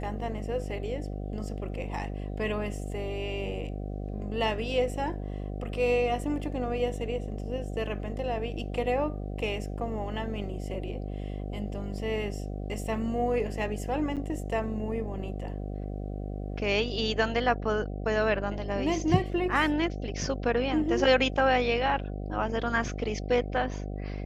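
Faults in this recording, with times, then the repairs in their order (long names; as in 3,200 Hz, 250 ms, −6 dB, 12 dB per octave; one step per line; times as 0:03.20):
mains buzz 50 Hz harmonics 15 −35 dBFS
0:14.16–0:14.17: drop-out 7.8 ms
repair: hum removal 50 Hz, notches 15
repair the gap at 0:14.16, 7.8 ms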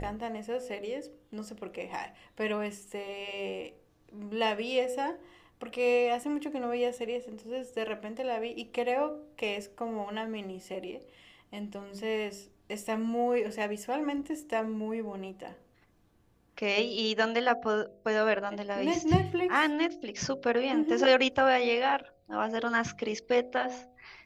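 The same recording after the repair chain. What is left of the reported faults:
none of them is left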